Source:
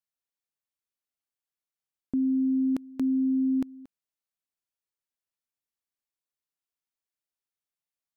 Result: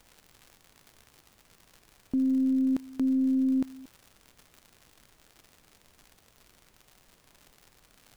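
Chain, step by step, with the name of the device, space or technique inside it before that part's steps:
record under a worn stylus (stylus tracing distortion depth 0.4 ms; surface crackle 130 per second −40 dBFS; pink noise bed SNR 31 dB)

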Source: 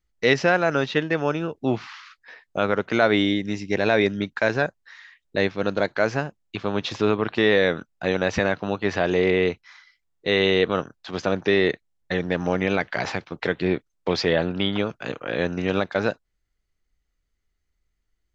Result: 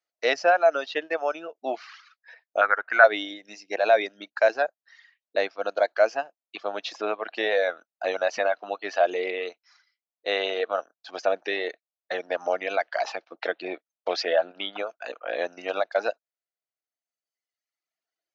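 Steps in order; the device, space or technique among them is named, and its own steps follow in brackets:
phone speaker on a table (loudspeaker in its box 390–6,400 Hz, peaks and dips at 400 Hz −8 dB, 670 Hz +9 dB, 1,000 Hz −5 dB, 2,000 Hz −4 dB, 3,400 Hz −4 dB)
reverb reduction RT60 1.5 s
0:02.61–0:03.04: drawn EQ curve 110 Hz 0 dB, 190 Hz −8 dB, 550 Hz −6 dB, 1,600 Hz +13 dB, 3,200 Hz −10 dB
level −1 dB

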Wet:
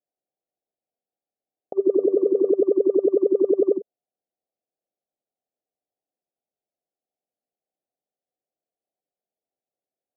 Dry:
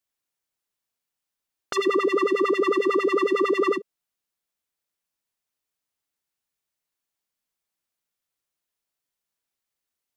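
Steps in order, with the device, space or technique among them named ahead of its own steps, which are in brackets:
Chebyshev low-pass filter 770 Hz, order 6
0:01.96–0:02.50: hum removal 96.28 Hz, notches 14
filter by subtraction (in parallel: low-pass filter 620 Hz 12 dB per octave + polarity inversion)
on the sum: level +5 dB

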